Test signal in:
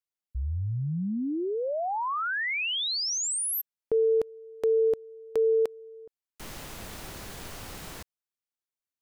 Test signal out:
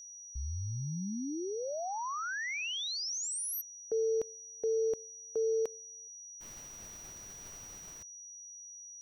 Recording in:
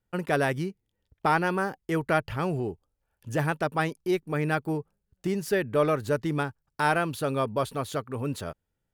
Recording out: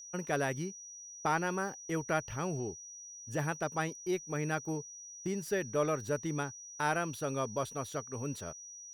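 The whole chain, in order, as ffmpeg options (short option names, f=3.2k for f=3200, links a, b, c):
-af "agate=range=-22dB:threshold=-35dB:ratio=3:release=200:detection=peak,aeval=exprs='val(0)+0.0112*sin(2*PI*5800*n/s)':c=same,volume=-7.5dB"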